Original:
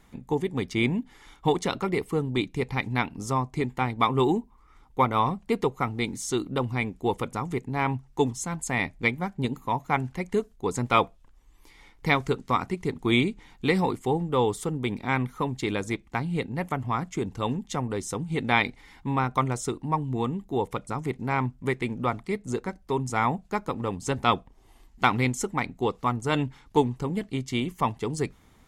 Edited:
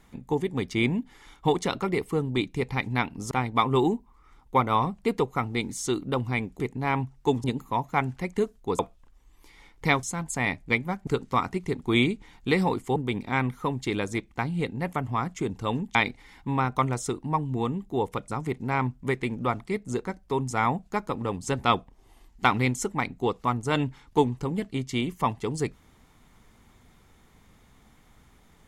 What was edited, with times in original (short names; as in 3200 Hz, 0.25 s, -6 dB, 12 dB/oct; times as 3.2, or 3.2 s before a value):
3.31–3.75 cut
7.04–7.52 cut
8.36–9.4 move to 12.24
10.75–11 cut
14.13–14.72 cut
17.71–18.54 cut